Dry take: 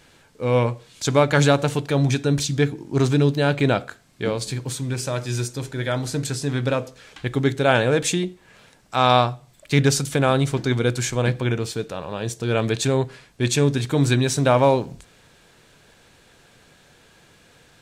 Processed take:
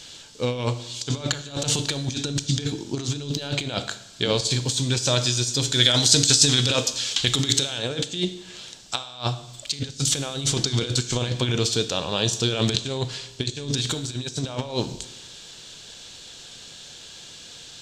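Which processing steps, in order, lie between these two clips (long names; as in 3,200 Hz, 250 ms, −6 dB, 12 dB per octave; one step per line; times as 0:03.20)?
flat-topped bell 4,800 Hz +15 dB
compressor whose output falls as the input rises −22 dBFS, ratio −0.5
0:05.72–0:07.78: high-shelf EQ 2,400 Hz +10 dB
four-comb reverb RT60 1 s, combs from 25 ms, DRR 12 dB
level −3 dB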